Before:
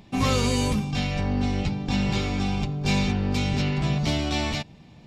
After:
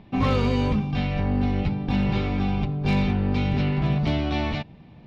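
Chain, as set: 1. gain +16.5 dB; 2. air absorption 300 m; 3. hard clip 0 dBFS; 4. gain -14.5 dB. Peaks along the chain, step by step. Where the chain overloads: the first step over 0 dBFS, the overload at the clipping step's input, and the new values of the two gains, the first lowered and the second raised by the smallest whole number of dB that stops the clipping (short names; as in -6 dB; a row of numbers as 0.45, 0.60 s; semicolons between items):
+5.5, +4.5, 0.0, -14.5 dBFS; step 1, 4.5 dB; step 1 +11.5 dB, step 4 -9.5 dB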